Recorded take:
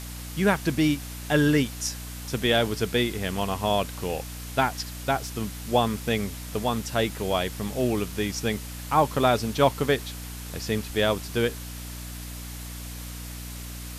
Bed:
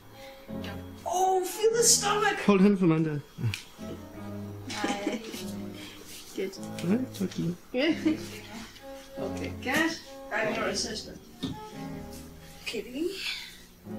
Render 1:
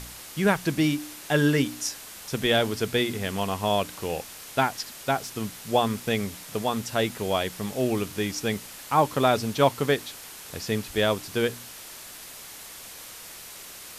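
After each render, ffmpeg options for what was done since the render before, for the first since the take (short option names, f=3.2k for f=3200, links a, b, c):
-af "bandreject=f=60:t=h:w=4,bandreject=f=120:t=h:w=4,bandreject=f=180:t=h:w=4,bandreject=f=240:t=h:w=4,bandreject=f=300:t=h:w=4"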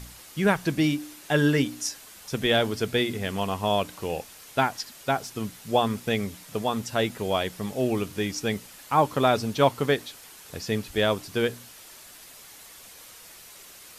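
-af "afftdn=nr=6:nf=-43"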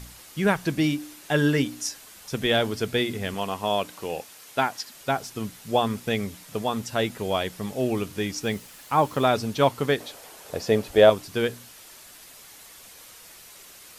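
-filter_complex "[0:a]asettb=1/sr,asplit=3[a][b][c];[a]atrim=end=3.344[d];[b]atrim=start=3.34:end=4.93,asetpts=PTS-STARTPTS,afade=t=in:d=0.004:c=qsin,afade=t=out:st=1.586:d=0.004:c=qsin,highpass=f=210:p=1[e];[c]atrim=start=4.926[f];[d][e]acrossfade=d=0.004:c1=hsin:c2=qsin[g];[g][f]acrossfade=d=0.004:c1=qsin:c2=hsin,asettb=1/sr,asplit=3[h][i][j];[h]atrim=end=8.434[k];[i]atrim=start=8.43:end=9.26,asetpts=PTS-STARTPTS,afade=t=in:d=0.004:c=qsin,afade=t=out:st=0.826:d=0.004:c=qsin,acrusher=bits=7:mix=0:aa=0.5[l];[j]atrim=start=9.256[m];[k][l]acrossfade=d=0.004:c1=hsin:c2=qsin[n];[n][m]acrossfade=d=0.004:c1=qsin:c2=hsin,asettb=1/sr,asplit=3[o][p][q];[o]atrim=end=10.004[r];[p]atrim=start=10:end=11.1,asetpts=PTS-STARTPTS,afade=t=in:d=0.004:c=qsin,afade=t=out:st=1.096:d=0.004:c=qsin,equalizer=f=590:w=1:g=12.5[s];[q]atrim=start=11.096[t];[r][s]acrossfade=d=0.004:c1=hsin:c2=qsin[u];[u][t]acrossfade=d=0.004:c1=qsin:c2=hsin"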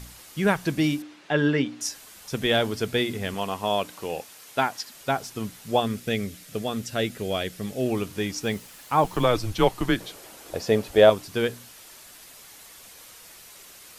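-filter_complex "[0:a]asettb=1/sr,asplit=3[a][b][c];[a]atrim=end=1.024[d];[b]atrim=start=1.02:end=1.81,asetpts=PTS-STARTPTS,afade=t=in:d=0.004:c=qsin,afade=t=out:st=0.786:d=0.004:c=qsin,highpass=140,lowpass=3.5k[e];[c]atrim=start=1.806[f];[d][e]acrossfade=d=0.004:c1=hsin:c2=qsin[g];[g][f]acrossfade=d=0.004:c1=qsin:c2=hsin,asettb=1/sr,asplit=3[h][i][j];[h]atrim=end=5.804[k];[i]atrim=start=5.8:end=7.86,asetpts=PTS-STARTPTS,afade=t=in:d=0.004:c=qsin,afade=t=out:st=2.056:d=0.004:c=qsin,equalizer=f=940:w=2.5:g=-11[l];[j]atrim=start=7.856[m];[k][l]acrossfade=d=0.004:c1=hsin:c2=qsin[n];[n][m]acrossfade=d=0.004:c1=qsin:c2=hsin,asettb=1/sr,asplit=3[o][p][q];[o]atrim=end=9.044[r];[p]atrim=start=9.04:end=10.54,asetpts=PTS-STARTPTS,afade=t=in:d=0.004:c=qsin,afade=t=out:st=1.496:d=0.004:c=qsin,afreqshift=-120[s];[q]atrim=start=10.536[t];[r][s]acrossfade=d=0.004:c1=hsin:c2=qsin[u];[u][t]acrossfade=d=0.004:c1=qsin:c2=hsin"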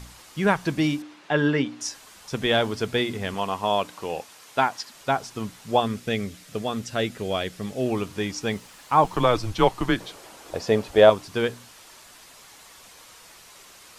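-filter_complex "[0:a]acrossover=split=9200[a][b];[b]acompressor=threshold=-59dB:ratio=4:attack=1:release=60[c];[a][c]amix=inputs=2:normalize=0,equalizer=f=1k:t=o:w=0.81:g=4.5"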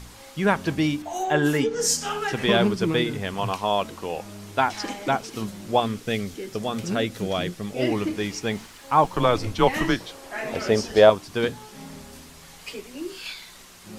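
-filter_complex "[1:a]volume=-2.5dB[a];[0:a][a]amix=inputs=2:normalize=0"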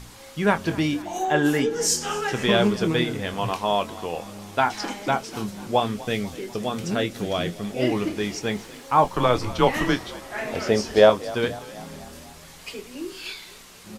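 -filter_complex "[0:a]asplit=2[a][b];[b]adelay=24,volume=-10.5dB[c];[a][c]amix=inputs=2:normalize=0,asplit=6[d][e][f][g][h][i];[e]adelay=247,afreqshift=35,volume=-19dB[j];[f]adelay=494,afreqshift=70,volume=-23.6dB[k];[g]adelay=741,afreqshift=105,volume=-28.2dB[l];[h]adelay=988,afreqshift=140,volume=-32.7dB[m];[i]adelay=1235,afreqshift=175,volume=-37.3dB[n];[d][j][k][l][m][n]amix=inputs=6:normalize=0"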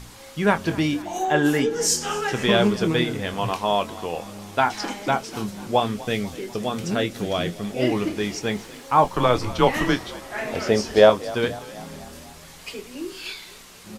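-af "volume=1dB"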